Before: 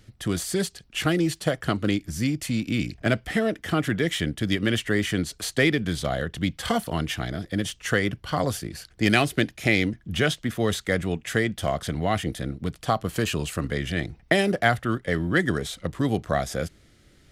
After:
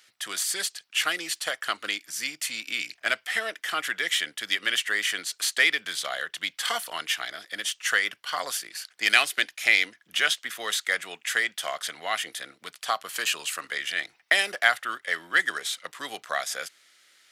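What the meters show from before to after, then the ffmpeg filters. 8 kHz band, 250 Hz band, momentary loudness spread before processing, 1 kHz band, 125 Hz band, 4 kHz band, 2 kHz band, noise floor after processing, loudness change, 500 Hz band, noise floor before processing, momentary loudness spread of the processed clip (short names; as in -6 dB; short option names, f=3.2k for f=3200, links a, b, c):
+4.5 dB, -22.5 dB, 7 LU, -2.0 dB, under -30 dB, +4.5 dB, +3.5 dB, -66 dBFS, -0.5 dB, -11.5 dB, -57 dBFS, 11 LU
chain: -af "highpass=1.3k,volume=4.5dB"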